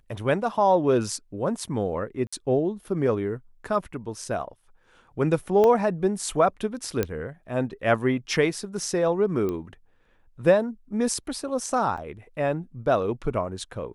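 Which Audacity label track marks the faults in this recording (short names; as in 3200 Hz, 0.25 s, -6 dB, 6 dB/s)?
2.270000	2.330000	gap 55 ms
5.640000	5.640000	pop -12 dBFS
7.030000	7.030000	pop -11 dBFS
9.490000	9.490000	pop -18 dBFS
11.970000	11.980000	gap 5.5 ms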